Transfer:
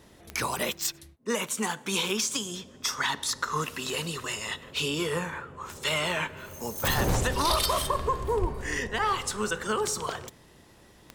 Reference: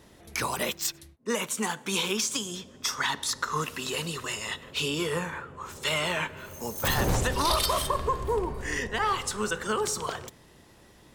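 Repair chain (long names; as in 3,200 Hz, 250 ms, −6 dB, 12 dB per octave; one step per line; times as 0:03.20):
click removal
high-pass at the plosives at 0:08.40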